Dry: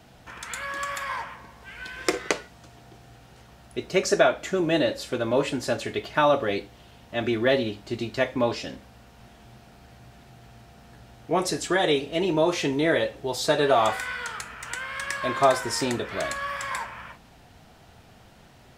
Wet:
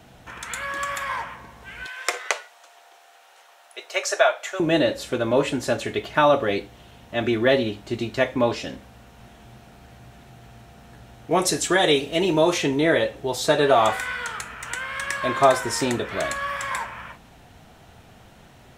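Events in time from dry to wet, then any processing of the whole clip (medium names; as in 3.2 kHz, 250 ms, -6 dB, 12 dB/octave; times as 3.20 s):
1.86–4.60 s: high-pass 600 Hz 24 dB/octave
11.31–12.58 s: treble shelf 3.4 kHz +6.5 dB
whole clip: peaking EQ 4.8 kHz -5.5 dB 0.26 oct; trim +3 dB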